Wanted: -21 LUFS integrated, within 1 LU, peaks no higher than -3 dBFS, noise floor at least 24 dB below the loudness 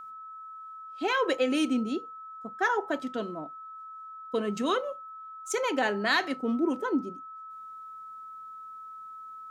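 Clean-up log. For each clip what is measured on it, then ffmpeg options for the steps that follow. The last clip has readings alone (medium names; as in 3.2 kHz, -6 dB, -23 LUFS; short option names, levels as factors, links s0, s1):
steady tone 1.3 kHz; tone level -41 dBFS; loudness -29.0 LUFS; peak level -11.5 dBFS; loudness target -21.0 LUFS
-> -af "bandreject=f=1300:w=30"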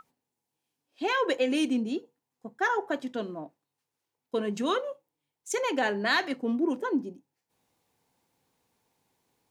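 steady tone not found; loudness -29.5 LUFS; peak level -12.0 dBFS; loudness target -21.0 LUFS
-> -af "volume=2.66"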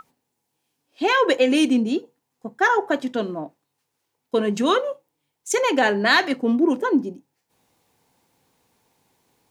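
loudness -21.0 LUFS; peak level -3.5 dBFS; noise floor -78 dBFS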